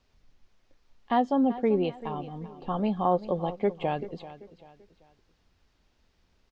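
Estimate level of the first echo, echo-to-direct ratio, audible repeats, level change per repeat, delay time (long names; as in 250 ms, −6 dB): −15.5 dB, −15.0 dB, 3, −9.0 dB, 388 ms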